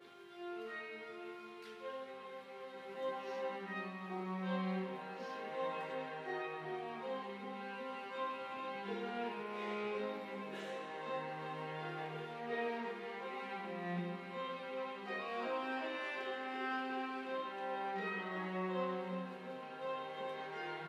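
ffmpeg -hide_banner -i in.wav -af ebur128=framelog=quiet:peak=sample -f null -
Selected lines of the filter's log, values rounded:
Integrated loudness:
  I:         -42.6 LUFS
  Threshold: -52.6 LUFS
Loudness range:
  LRA:         2.9 LU
  Threshold: -62.4 LUFS
  LRA low:   -43.6 LUFS
  LRA high:  -40.7 LUFS
Sample peak:
  Peak:      -26.8 dBFS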